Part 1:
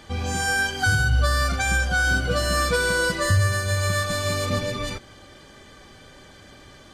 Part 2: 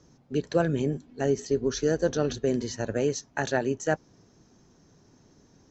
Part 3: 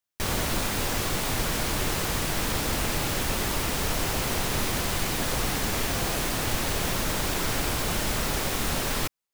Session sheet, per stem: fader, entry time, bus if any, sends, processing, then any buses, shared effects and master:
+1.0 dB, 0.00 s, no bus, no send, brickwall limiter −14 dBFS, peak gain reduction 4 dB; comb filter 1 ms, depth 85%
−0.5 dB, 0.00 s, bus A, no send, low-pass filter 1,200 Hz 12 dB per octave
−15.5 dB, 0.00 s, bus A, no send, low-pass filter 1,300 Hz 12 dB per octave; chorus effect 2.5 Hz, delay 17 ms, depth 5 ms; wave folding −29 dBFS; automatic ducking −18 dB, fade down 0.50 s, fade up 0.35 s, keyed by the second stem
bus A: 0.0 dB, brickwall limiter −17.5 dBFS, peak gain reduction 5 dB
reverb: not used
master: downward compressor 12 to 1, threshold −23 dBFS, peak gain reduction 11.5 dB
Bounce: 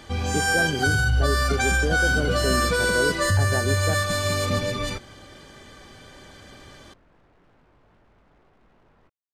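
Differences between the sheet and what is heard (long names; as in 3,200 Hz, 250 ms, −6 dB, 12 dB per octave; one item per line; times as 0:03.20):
stem 1: missing comb filter 1 ms, depth 85%
stem 3 −15.5 dB → −24.5 dB
master: missing downward compressor 12 to 1, threshold −23 dBFS, peak gain reduction 11.5 dB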